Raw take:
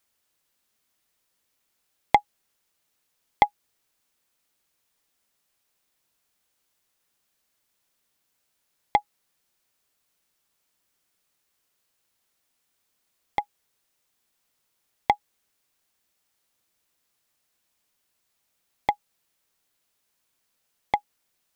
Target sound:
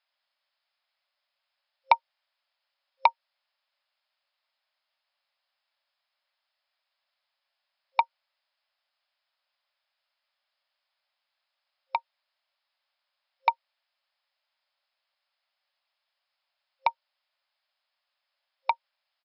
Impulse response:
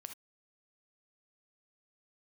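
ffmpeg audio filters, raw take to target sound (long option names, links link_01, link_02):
-af "asetrate=49392,aresample=44100,afftfilt=real='re*between(b*sr/4096,530,5300)':imag='im*between(b*sr/4096,530,5300)':win_size=4096:overlap=0.75,volume=-1dB"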